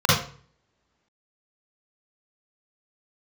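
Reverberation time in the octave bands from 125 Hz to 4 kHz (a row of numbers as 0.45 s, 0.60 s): 0.65 s, 0.50 s, 0.50 s, 0.45 s, 0.40 s, 0.35 s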